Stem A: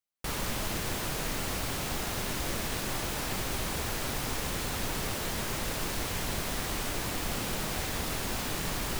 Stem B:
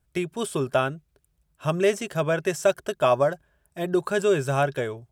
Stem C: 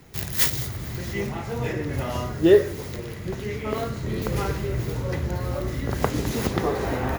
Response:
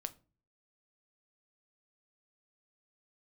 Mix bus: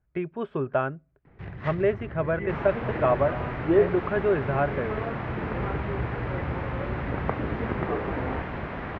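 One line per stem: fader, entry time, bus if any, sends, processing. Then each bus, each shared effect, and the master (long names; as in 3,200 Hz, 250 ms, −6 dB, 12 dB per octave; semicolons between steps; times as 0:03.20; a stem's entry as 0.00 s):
+2.5 dB, 2.25 s, no send, high-pass filter 54 Hz
−3.5 dB, 0.00 s, send −14 dB, no processing
−5.0 dB, 1.25 s, no send, no processing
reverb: on, RT60 0.35 s, pre-delay 7 ms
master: low-pass filter 2,100 Hz 24 dB per octave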